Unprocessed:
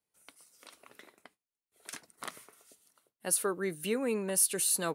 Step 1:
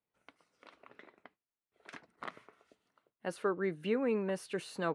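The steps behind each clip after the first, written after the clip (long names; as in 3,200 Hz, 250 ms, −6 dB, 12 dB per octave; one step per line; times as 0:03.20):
low-pass filter 2,300 Hz 12 dB per octave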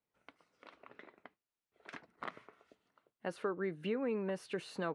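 high-shelf EQ 7,600 Hz −11 dB
downward compressor 2 to 1, threshold −37 dBFS, peak gain reduction 6 dB
level +1 dB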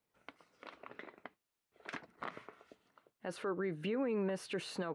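brickwall limiter −33.5 dBFS, peak gain reduction 10 dB
level +5 dB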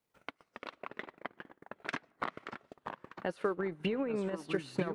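delay with pitch and tempo change per echo 221 ms, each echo −3 semitones, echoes 3, each echo −6 dB
comb and all-pass reverb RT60 0.59 s, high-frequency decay 0.35×, pre-delay 80 ms, DRR 20 dB
transient designer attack +9 dB, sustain −9 dB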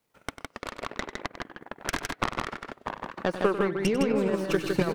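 stylus tracing distortion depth 0.28 ms
on a send: loudspeakers that aren't time-aligned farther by 33 metres −12 dB, 55 metres −4 dB
on the sum: level +7.5 dB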